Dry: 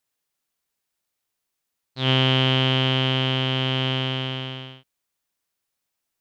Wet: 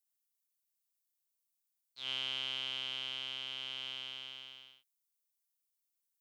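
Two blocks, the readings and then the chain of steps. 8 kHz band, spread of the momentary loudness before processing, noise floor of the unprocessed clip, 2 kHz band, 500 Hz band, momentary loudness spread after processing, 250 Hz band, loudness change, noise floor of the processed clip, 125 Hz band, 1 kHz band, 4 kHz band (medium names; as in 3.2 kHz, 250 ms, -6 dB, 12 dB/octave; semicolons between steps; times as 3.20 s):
no reading, 11 LU, -81 dBFS, -17.5 dB, -30.0 dB, 13 LU, -36.0 dB, -17.0 dB, -85 dBFS, under -40 dB, -24.0 dB, -14.0 dB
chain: differentiator; band-stop 1.8 kHz, Q 11; trim -7 dB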